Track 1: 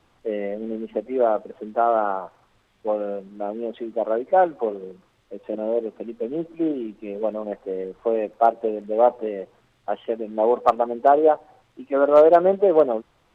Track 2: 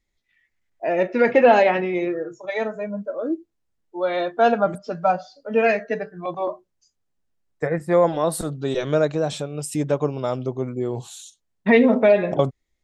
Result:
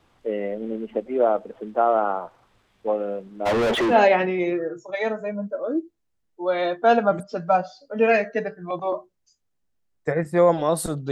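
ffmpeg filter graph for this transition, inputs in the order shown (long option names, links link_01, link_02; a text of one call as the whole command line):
ffmpeg -i cue0.wav -i cue1.wav -filter_complex "[0:a]asplit=3[link_01][link_02][link_03];[link_01]afade=type=out:start_time=3.45:duration=0.02[link_04];[link_02]asplit=2[link_05][link_06];[link_06]highpass=frequency=720:poles=1,volume=42dB,asoftclip=type=tanh:threshold=-14dB[link_07];[link_05][link_07]amix=inputs=2:normalize=0,lowpass=frequency=2700:poles=1,volume=-6dB,afade=type=in:start_time=3.45:duration=0.02,afade=type=out:start_time=3.98:duration=0.02[link_08];[link_03]afade=type=in:start_time=3.98:duration=0.02[link_09];[link_04][link_08][link_09]amix=inputs=3:normalize=0,apad=whole_dur=11.11,atrim=end=11.11,atrim=end=3.98,asetpts=PTS-STARTPTS[link_10];[1:a]atrim=start=1.43:end=8.66,asetpts=PTS-STARTPTS[link_11];[link_10][link_11]acrossfade=duration=0.1:curve1=tri:curve2=tri" out.wav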